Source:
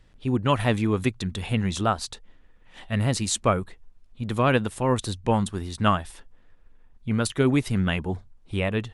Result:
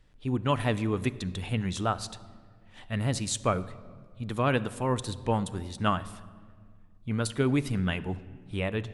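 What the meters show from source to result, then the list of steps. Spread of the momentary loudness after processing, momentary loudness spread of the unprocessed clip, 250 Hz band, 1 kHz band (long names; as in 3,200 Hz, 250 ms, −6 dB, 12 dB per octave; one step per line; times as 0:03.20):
13 LU, 11 LU, −5.0 dB, −5.0 dB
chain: rectangular room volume 2,500 cubic metres, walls mixed, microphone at 0.39 metres
level −5 dB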